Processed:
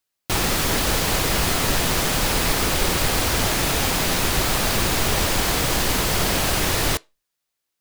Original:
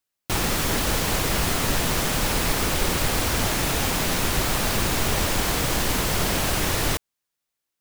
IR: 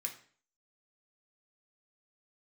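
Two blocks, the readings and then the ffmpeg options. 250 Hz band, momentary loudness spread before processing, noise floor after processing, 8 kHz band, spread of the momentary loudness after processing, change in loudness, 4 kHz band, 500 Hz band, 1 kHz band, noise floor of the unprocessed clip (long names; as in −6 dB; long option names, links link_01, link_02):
+1.5 dB, 0 LU, −80 dBFS, +3.0 dB, 0 LU, +2.5 dB, +3.5 dB, +2.5 dB, +2.5 dB, −83 dBFS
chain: -filter_complex "[0:a]asplit=2[link_01][link_02];[1:a]atrim=start_sample=2205,asetrate=88200,aresample=44100,lowpass=8200[link_03];[link_02][link_03]afir=irnorm=-1:irlink=0,volume=-7dB[link_04];[link_01][link_04]amix=inputs=2:normalize=0,volume=2.5dB"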